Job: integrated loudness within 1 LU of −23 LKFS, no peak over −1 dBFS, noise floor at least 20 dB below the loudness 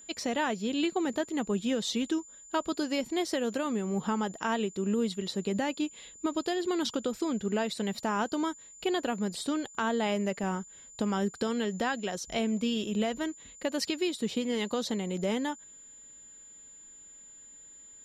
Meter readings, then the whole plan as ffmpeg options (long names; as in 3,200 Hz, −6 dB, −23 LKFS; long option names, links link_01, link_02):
interfering tone 7,100 Hz; level of the tone −49 dBFS; integrated loudness −31.5 LKFS; sample peak −17.5 dBFS; target loudness −23.0 LKFS
→ -af "bandreject=frequency=7100:width=30"
-af "volume=8.5dB"